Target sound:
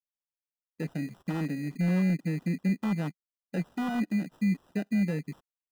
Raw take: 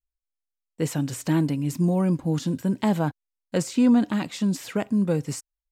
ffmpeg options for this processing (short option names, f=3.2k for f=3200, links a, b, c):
-filter_complex "[0:a]aeval=exprs='0.119*(abs(mod(val(0)/0.119+3,4)-2)-1)':c=same,afwtdn=0.0447,lowshelf=f=130:t=q:w=3:g=-11,acrusher=samples=20:mix=1:aa=0.000001,acrossover=split=2900[a][b];[b]acompressor=threshold=-42dB:ratio=4:attack=1:release=60[c];[a][c]amix=inputs=2:normalize=0,volume=-8.5dB"